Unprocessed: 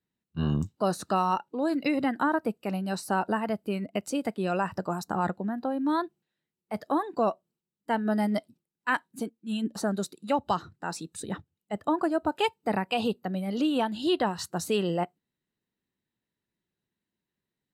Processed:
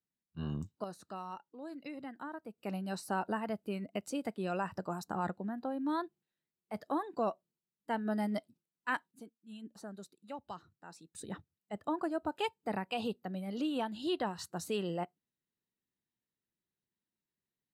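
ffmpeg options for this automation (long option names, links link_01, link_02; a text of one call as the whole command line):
ffmpeg -i in.wav -af "asetnsamples=nb_out_samples=441:pad=0,asendcmd='0.84 volume volume -18dB;2.58 volume volume -7.5dB;9.11 volume volume -18dB;11.15 volume volume -8.5dB',volume=-11dB" out.wav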